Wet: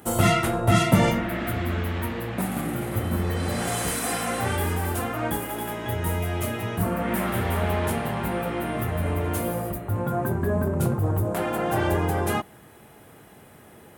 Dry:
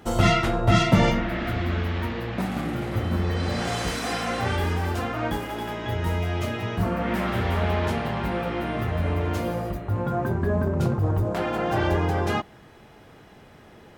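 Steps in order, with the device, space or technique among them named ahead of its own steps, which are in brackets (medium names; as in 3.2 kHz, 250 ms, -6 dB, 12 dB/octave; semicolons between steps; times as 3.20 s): budget condenser microphone (high-pass 68 Hz; resonant high shelf 7.4 kHz +12.5 dB, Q 1.5)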